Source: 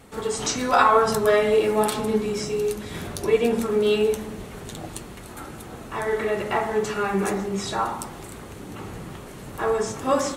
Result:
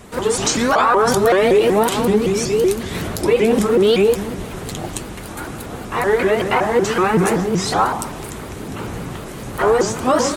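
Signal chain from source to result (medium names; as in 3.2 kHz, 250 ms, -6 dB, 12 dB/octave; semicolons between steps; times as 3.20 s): peak limiter -14.5 dBFS, peak gain reduction 9 dB; vibrato with a chosen wave saw up 5.3 Hz, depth 250 cents; trim +8.5 dB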